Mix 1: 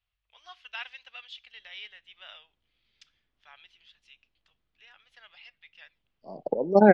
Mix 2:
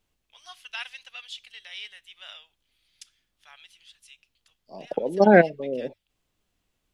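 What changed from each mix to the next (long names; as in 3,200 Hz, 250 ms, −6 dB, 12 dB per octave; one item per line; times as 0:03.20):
second voice: entry −1.55 s
master: remove high-frequency loss of the air 220 metres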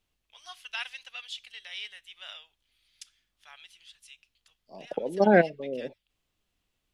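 second voice −4.5 dB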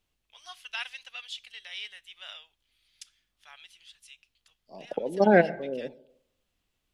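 reverb: on, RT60 0.75 s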